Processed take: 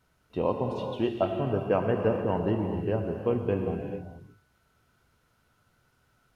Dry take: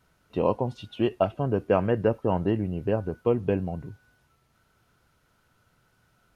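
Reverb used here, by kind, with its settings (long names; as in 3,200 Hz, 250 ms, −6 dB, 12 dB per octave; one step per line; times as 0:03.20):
reverb whose tail is shaped and stops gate 470 ms flat, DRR 3 dB
level −3.5 dB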